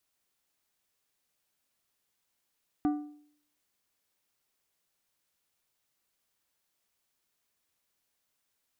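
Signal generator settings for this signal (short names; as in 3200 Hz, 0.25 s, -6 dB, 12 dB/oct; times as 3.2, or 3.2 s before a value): metal hit plate, lowest mode 296 Hz, decay 0.61 s, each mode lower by 9.5 dB, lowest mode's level -22 dB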